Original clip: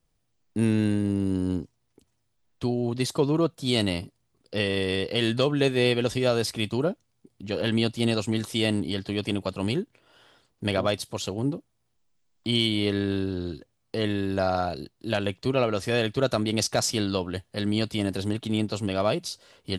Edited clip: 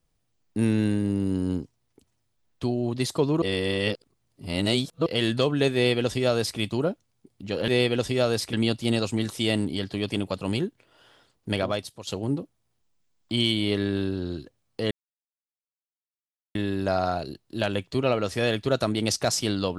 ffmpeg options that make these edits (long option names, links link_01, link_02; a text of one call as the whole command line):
ffmpeg -i in.wav -filter_complex "[0:a]asplit=7[link_01][link_02][link_03][link_04][link_05][link_06][link_07];[link_01]atrim=end=3.422[link_08];[link_02]atrim=start=3.418:end=5.062,asetpts=PTS-STARTPTS,areverse[link_09];[link_03]atrim=start=5.058:end=7.682[link_10];[link_04]atrim=start=5.738:end=6.592[link_11];[link_05]atrim=start=7.678:end=11.22,asetpts=PTS-STARTPTS,afade=type=out:start_time=2.992:duration=0.55:silence=0.266073[link_12];[link_06]atrim=start=11.22:end=14.06,asetpts=PTS-STARTPTS,afade=type=in:duration=0.004:curve=hsin:silence=0.266073,afade=type=out:start_time=2.836:duration=0.004:curve=hsin,apad=pad_dur=1.64[link_13];[link_07]atrim=start=14.06,asetpts=PTS-STARTPTS,afade=type=in:duration=0.004:curve=hsin[link_14];[link_08][link_09]acrossfade=duration=0.004:curve1=hsin:curve2=hsin[link_15];[link_15][link_10]acrossfade=duration=0.004:curve1=hsin:curve2=hsin[link_16];[link_16][link_11]acrossfade=duration=0.004:curve1=hsin:curve2=hsin[link_17];[link_12][link_13][link_14]concat=n=3:v=0:a=1[link_18];[link_17][link_18]acrossfade=duration=0.004:curve1=hsin:curve2=hsin" out.wav